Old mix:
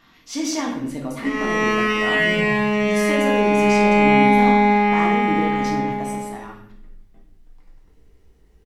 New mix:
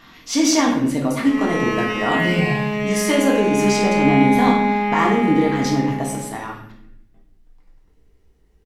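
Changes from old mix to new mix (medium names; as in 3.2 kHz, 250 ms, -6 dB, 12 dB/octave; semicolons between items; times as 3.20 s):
speech +8.0 dB; background -3.5 dB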